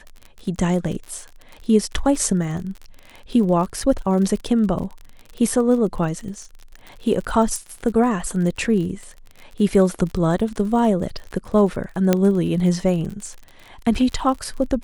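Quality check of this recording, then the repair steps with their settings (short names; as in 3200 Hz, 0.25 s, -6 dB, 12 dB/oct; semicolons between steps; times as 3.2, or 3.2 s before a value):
crackle 43/s -29 dBFS
7.56 pop
12.13 pop -3 dBFS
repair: de-click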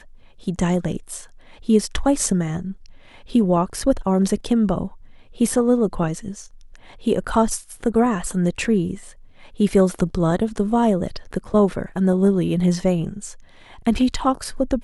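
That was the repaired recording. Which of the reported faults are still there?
7.56 pop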